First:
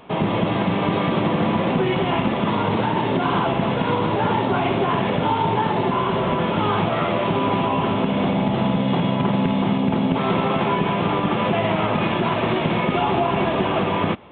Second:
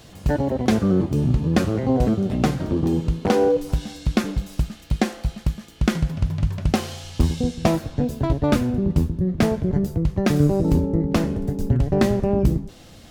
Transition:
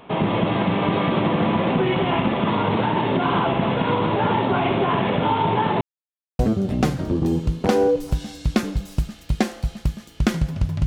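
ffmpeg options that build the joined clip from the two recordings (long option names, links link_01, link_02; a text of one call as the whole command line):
ffmpeg -i cue0.wav -i cue1.wav -filter_complex "[0:a]apad=whole_dur=10.86,atrim=end=10.86,asplit=2[link_01][link_02];[link_01]atrim=end=5.81,asetpts=PTS-STARTPTS,afade=type=out:start_time=5.806:duration=0.004:curve=hsin[link_03];[link_02]atrim=start=5.81:end=6.39,asetpts=PTS-STARTPTS,volume=0[link_04];[1:a]atrim=start=2:end=6.47,asetpts=PTS-STARTPTS,afade=type=in:duration=0.004:curve=hsin[link_05];[link_03][link_04][link_05]concat=n=3:v=0:a=1" out.wav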